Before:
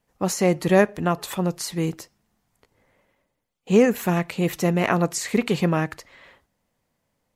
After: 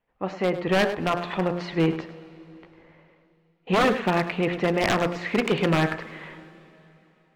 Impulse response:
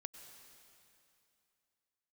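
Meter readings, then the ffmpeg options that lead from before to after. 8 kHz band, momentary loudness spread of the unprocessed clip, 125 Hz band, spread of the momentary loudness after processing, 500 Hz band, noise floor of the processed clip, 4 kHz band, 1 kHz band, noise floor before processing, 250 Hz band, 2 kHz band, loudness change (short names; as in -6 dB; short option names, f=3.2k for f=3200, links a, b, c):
-12.5 dB, 8 LU, -3.5 dB, 13 LU, -2.5 dB, -65 dBFS, +2.0 dB, +1.0 dB, -76 dBFS, -3.0 dB, +2.0 dB, -2.0 dB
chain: -filter_complex "[0:a]lowpass=f=3k:w=0.5412,lowpass=f=3k:w=1.3066,equalizer=f=110:w=0.46:g=-7,bandreject=f=58.29:t=h:w=4,bandreject=f=116.58:t=h:w=4,bandreject=f=174.87:t=h:w=4,bandreject=f=233.16:t=h:w=4,bandreject=f=291.45:t=h:w=4,bandreject=f=349.74:t=h:w=4,bandreject=f=408.03:t=h:w=4,bandreject=f=466.32:t=h:w=4,bandreject=f=524.61:t=h:w=4,bandreject=f=582.9:t=h:w=4,bandreject=f=641.19:t=h:w=4,bandreject=f=699.48:t=h:w=4,bandreject=f=757.77:t=h:w=4,bandreject=f=816.06:t=h:w=4,bandreject=f=874.35:t=h:w=4,bandreject=f=932.64:t=h:w=4,bandreject=f=990.93:t=h:w=4,bandreject=f=1.04922k:t=h:w=4,bandreject=f=1.10751k:t=h:w=4,bandreject=f=1.1658k:t=h:w=4,bandreject=f=1.22409k:t=h:w=4,bandreject=f=1.28238k:t=h:w=4,bandreject=f=1.34067k:t=h:w=4,bandreject=f=1.39896k:t=h:w=4,bandreject=f=1.45725k:t=h:w=4,bandreject=f=1.51554k:t=h:w=4,bandreject=f=1.57383k:t=h:w=4,bandreject=f=1.63212k:t=h:w=4,bandreject=f=1.69041k:t=h:w=4,bandreject=f=1.7487k:t=h:w=4,bandreject=f=1.80699k:t=h:w=4,dynaudnorm=f=140:g=11:m=12dB,aeval=exprs='0.251*(abs(mod(val(0)/0.251+3,4)-2)-1)':c=same,asplit=2[a][b];[1:a]atrim=start_sample=2205,asetrate=36603,aresample=44100,adelay=102[c];[b][c]afir=irnorm=-1:irlink=0,volume=-8.5dB[d];[a][d]amix=inputs=2:normalize=0,volume=-2dB" -ar 48000 -c:a aac -b:a 192k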